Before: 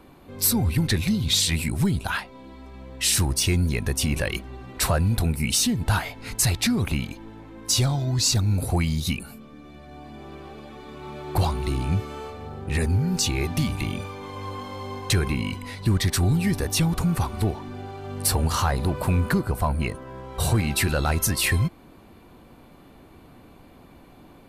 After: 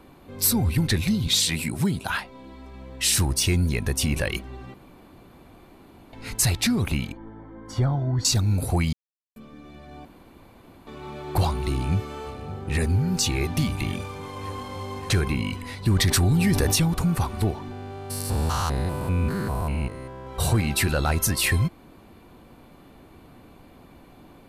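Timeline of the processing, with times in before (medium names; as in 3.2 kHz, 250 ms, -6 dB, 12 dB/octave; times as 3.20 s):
1.27–2.10 s: high-pass 130 Hz
4.74–6.13 s: room tone
7.12–8.25 s: Savitzky-Golay filter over 41 samples
8.93–9.36 s: mute
10.05–10.87 s: room tone
11.69–12.81 s: echo throw 570 ms, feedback 85%, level -16.5 dB
13.93–15.21 s: CVSD coder 64 kbps
15.92–16.76 s: level flattener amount 70%
17.71–20.27 s: spectrogram pixelated in time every 200 ms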